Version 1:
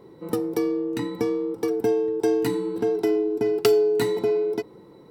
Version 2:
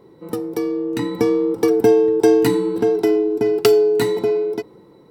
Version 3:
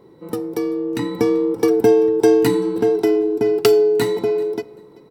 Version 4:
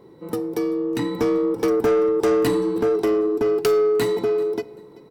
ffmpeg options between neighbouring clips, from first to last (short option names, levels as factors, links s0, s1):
-af "dynaudnorm=f=230:g=9:m=3.76"
-af "aecho=1:1:387|774:0.0708|0.0149"
-af "asoftclip=type=tanh:threshold=0.188"